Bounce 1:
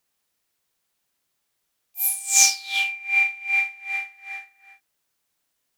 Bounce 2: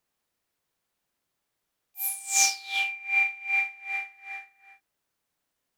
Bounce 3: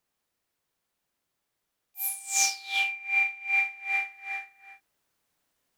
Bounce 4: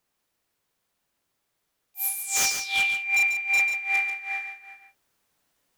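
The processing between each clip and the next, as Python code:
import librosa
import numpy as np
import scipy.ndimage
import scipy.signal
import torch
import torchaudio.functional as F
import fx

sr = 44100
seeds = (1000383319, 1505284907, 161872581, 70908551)

y1 = fx.high_shelf(x, sr, hz=2200.0, db=-7.5)
y2 = fx.rider(y1, sr, range_db=4, speed_s=0.5)
y3 = 10.0 ** (-20.5 / 20.0) * (np.abs((y2 / 10.0 ** (-20.5 / 20.0) + 3.0) % 4.0 - 2.0) - 1.0)
y3 = y3 + 10.0 ** (-8.0 / 20.0) * np.pad(y3, (int(141 * sr / 1000.0), 0))[:len(y3)]
y3 = F.gain(torch.from_numpy(y3), 3.5).numpy()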